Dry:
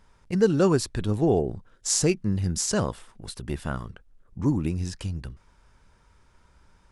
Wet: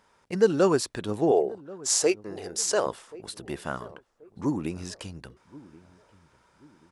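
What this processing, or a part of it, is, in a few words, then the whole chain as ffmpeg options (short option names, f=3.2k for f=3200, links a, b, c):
filter by subtraction: -filter_complex "[0:a]asettb=1/sr,asplit=3[a][b][c];[a]atrim=end=1.314[d];[b]atrim=start=1.31:end=2.86,asetpts=PTS-STARTPTS,afade=t=in:d=0.004:c=qsin,afade=t=out:st=1.546:d=0.004:c=qsin,lowshelf=f=290:t=q:w=1.5:g=-11.5[e];[c]atrim=start=2.856[f];[d][e]acrossfade=d=0.004:c1=hsin:c2=qsin[g];[g][f]acrossfade=d=0.004:c1=qsin:c2=hsin,asplit=2[h][i];[i]adelay=1082,lowpass=f=840:p=1,volume=-19dB,asplit=2[j][k];[k]adelay=1082,lowpass=f=840:p=1,volume=0.39,asplit=2[l][m];[m]adelay=1082,lowpass=f=840:p=1,volume=0.39[n];[h][j][l][n]amix=inputs=4:normalize=0,asplit=2[o][p];[p]lowpass=550,volume=-1[q];[o][q]amix=inputs=2:normalize=0"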